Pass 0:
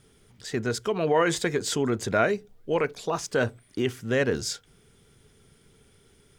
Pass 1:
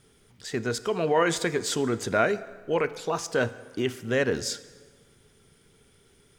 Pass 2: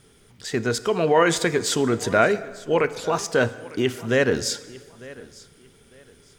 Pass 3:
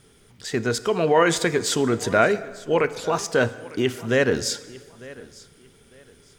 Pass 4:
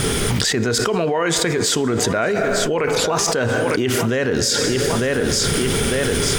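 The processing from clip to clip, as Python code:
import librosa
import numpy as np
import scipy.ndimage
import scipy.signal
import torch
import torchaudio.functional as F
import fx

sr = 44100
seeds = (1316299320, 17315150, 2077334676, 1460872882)

y1 = fx.low_shelf(x, sr, hz=200.0, db=-3.5)
y1 = fx.rev_plate(y1, sr, seeds[0], rt60_s=1.5, hf_ratio=0.75, predelay_ms=0, drr_db=14.5)
y2 = fx.echo_feedback(y1, sr, ms=901, feedback_pct=26, wet_db=-20.5)
y2 = F.gain(torch.from_numpy(y2), 5.0).numpy()
y3 = y2
y4 = fx.env_flatten(y3, sr, amount_pct=100)
y4 = F.gain(torch.from_numpy(y4), -4.5).numpy()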